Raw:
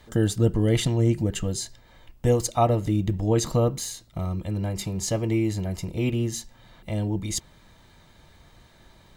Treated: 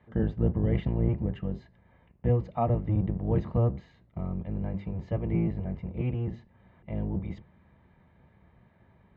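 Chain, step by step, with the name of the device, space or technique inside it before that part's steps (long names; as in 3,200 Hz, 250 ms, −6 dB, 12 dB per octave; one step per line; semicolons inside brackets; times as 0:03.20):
sub-octave bass pedal (sub-octave generator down 1 octave, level +4 dB; loudspeaker in its box 73–2,200 Hz, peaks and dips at 190 Hz +5 dB, 300 Hz −5 dB, 1,400 Hz −5 dB)
level −7 dB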